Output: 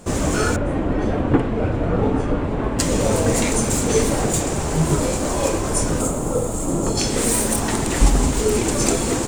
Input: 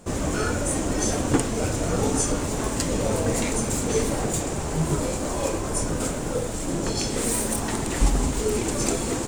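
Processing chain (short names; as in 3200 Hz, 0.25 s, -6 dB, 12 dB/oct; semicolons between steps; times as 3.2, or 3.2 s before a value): 0.56–2.79 air absorption 500 m; 6.01–6.97 spectral gain 1400–6300 Hz -9 dB; gain +5.5 dB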